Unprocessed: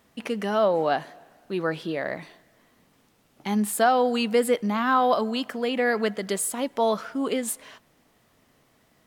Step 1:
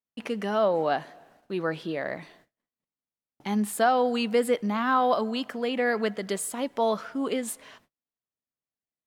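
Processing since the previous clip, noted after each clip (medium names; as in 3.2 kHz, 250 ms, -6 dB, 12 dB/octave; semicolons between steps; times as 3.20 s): treble shelf 7.5 kHz -5 dB; gate -56 dBFS, range -37 dB; trim -2 dB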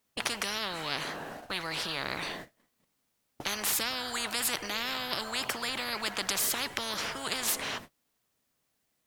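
spectrum-flattening compressor 10:1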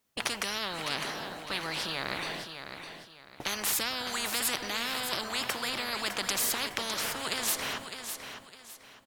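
feedback delay 607 ms, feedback 31%, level -8.5 dB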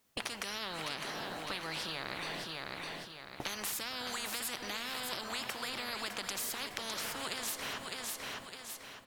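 compression 4:1, threshold -41 dBFS, peak gain reduction 13.5 dB; on a send at -15 dB: reverberation RT60 2.3 s, pre-delay 6 ms; on the sum: trim +3.5 dB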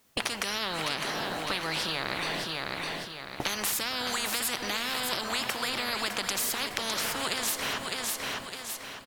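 delay 1082 ms -23 dB; trim +8 dB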